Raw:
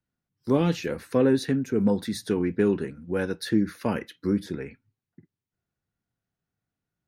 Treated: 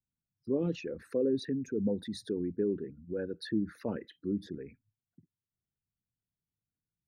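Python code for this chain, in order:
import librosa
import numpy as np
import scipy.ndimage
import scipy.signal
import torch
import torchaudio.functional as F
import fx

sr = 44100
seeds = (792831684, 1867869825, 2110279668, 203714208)

y = fx.envelope_sharpen(x, sr, power=2.0)
y = y * 10.0 ** (-8.5 / 20.0)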